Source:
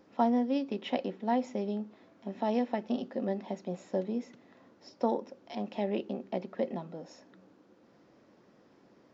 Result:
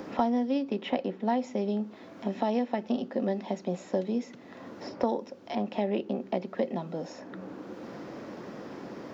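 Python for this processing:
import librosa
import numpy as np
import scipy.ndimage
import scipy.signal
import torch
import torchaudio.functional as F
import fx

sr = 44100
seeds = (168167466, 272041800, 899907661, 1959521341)

y = fx.band_squash(x, sr, depth_pct=70)
y = y * 10.0 ** (3.0 / 20.0)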